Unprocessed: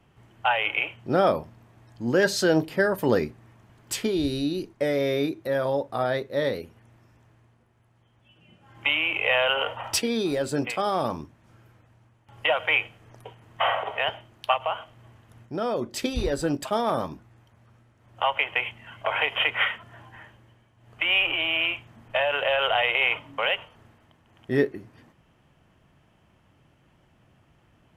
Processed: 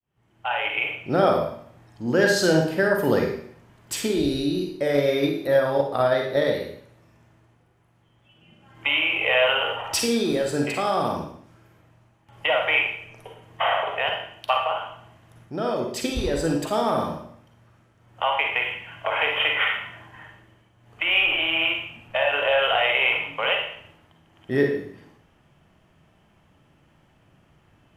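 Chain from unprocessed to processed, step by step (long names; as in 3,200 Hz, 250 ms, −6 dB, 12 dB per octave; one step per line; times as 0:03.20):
fade in at the beginning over 0.87 s
four-comb reverb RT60 0.62 s, DRR 1.5 dB
0:04.89–0:06.53: transient designer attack +8 dB, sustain +2 dB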